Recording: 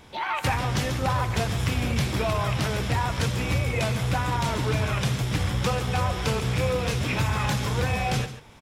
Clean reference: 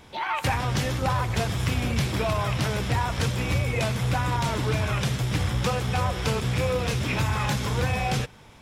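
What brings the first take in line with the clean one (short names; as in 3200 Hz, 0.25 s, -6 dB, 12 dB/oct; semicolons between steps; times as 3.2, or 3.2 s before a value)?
inverse comb 0.14 s -13 dB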